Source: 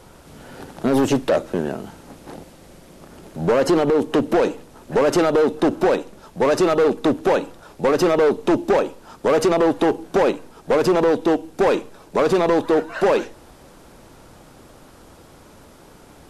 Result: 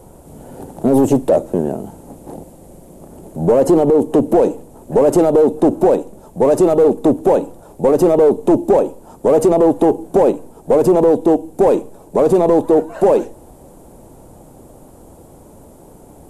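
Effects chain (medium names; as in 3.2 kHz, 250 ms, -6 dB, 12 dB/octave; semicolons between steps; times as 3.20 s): high-order bell 2.6 kHz -15 dB 2.6 oct; trim +5.5 dB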